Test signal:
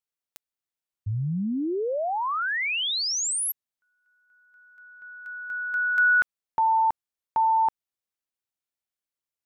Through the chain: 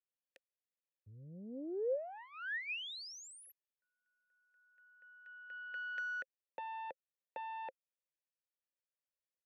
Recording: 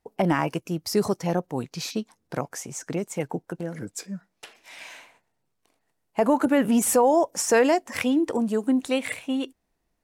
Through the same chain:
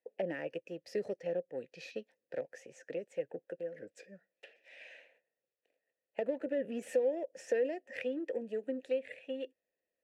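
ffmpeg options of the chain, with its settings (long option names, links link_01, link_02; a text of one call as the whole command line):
ffmpeg -i in.wav -filter_complex "[0:a]aeval=exprs='0.316*(cos(1*acos(clip(val(0)/0.316,-1,1)))-cos(1*PI/2))+0.0447*(cos(2*acos(clip(val(0)/0.316,-1,1)))-cos(2*PI/2))+0.0141*(cos(5*acos(clip(val(0)/0.316,-1,1)))-cos(5*PI/2))+0.0141*(cos(7*acos(clip(val(0)/0.316,-1,1)))-cos(7*PI/2))+0.0112*(cos(8*acos(clip(val(0)/0.316,-1,1)))-cos(8*PI/2))':channel_layout=same,asplit=3[link_01][link_02][link_03];[link_01]bandpass=frequency=530:width_type=q:width=8,volume=0dB[link_04];[link_02]bandpass=frequency=1840:width_type=q:width=8,volume=-6dB[link_05];[link_03]bandpass=frequency=2480:width_type=q:width=8,volume=-9dB[link_06];[link_04][link_05][link_06]amix=inputs=3:normalize=0,acrossover=split=350[link_07][link_08];[link_08]acompressor=threshold=-43dB:ratio=3:attack=38:release=444:knee=2.83:detection=peak[link_09];[link_07][link_09]amix=inputs=2:normalize=0,volume=2dB" out.wav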